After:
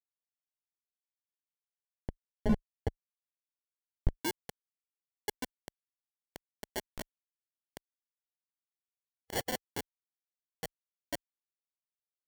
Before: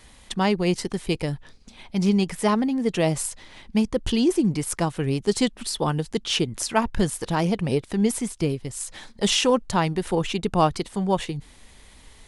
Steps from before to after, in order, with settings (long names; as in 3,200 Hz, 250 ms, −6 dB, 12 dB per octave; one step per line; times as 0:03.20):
spectral dynamics exaggerated over time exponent 3
mains-hum notches 50/100/150/200/250/300 Hz
shaped tremolo saw up 5.1 Hz, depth 95%
parametric band 130 Hz −11 dB 1.2 octaves
reverb reduction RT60 1.4 s
rotating-speaker cabinet horn 0.7 Hz, later 8 Hz, at 0:05.17
bit reduction 5 bits
downward compressor, threshold −28 dBFS, peak gain reduction 8 dB
0:08.13–0:09.58: gain on a spectral selection 2,600–5,500 Hz +9 dB
decimation without filtering 35×
hard clipping −30.5 dBFS, distortion −8 dB
spectral tilt −3.5 dB per octave, from 0:04.19 +2 dB per octave
level +2 dB